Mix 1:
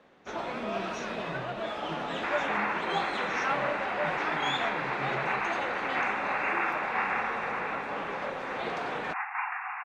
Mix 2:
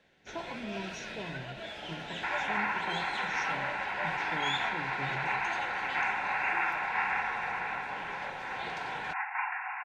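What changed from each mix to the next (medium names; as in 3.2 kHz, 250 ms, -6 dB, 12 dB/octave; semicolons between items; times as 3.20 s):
first sound: add graphic EQ 250/500/1000 Hz -9/-7/-10 dB; master: add Butterworth band-stop 1.2 kHz, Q 5.5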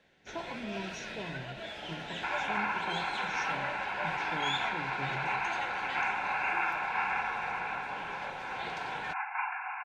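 second sound: add Butterworth band-stop 1.9 kHz, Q 6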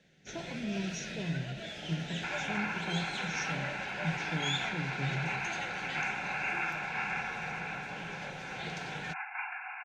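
master: add fifteen-band graphic EQ 160 Hz +11 dB, 1 kHz -11 dB, 6.3 kHz +7 dB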